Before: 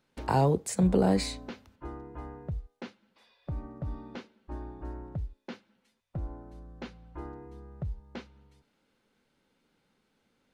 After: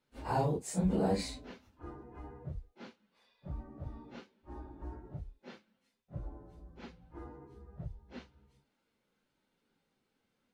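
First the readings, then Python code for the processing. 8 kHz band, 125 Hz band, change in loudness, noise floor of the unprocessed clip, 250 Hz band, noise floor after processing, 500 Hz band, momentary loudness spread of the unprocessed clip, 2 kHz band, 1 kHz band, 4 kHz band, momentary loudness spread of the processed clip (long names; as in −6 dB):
−6.0 dB, −7.0 dB, −6.5 dB, −75 dBFS, −6.5 dB, −81 dBFS, −6.5 dB, 21 LU, −6.0 dB, −5.5 dB, −6.5 dB, 21 LU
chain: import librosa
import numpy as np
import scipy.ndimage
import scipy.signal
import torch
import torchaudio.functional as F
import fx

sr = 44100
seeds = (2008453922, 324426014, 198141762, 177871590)

y = fx.phase_scramble(x, sr, seeds[0], window_ms=100)
y = F.gain(torch.from_numpy(y), -6.5).numpy()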